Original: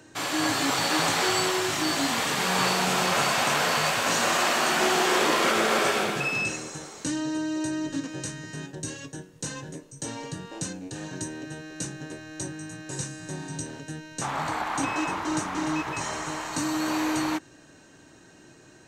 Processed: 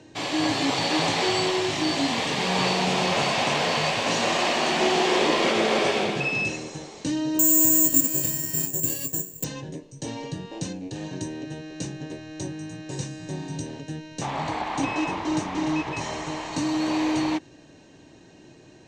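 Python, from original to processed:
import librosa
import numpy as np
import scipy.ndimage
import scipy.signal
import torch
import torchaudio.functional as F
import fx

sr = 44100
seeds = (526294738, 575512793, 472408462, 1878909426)

y = scipy.signal.sosfilt(scipy.signal.butter(2, 4700.0, 'lowpass', fs=sr, output='sos'), x)
y = fx.peak_eq(y, sr, hz=1400.0, db=-12.0, octaves=0.64)
y = fx.resample_bad(y, sr, factor=6, down='filtered', up='zero_stuff', at=(7.39, 9.44))
y = y * librosa.db_to_amplitude(3.5)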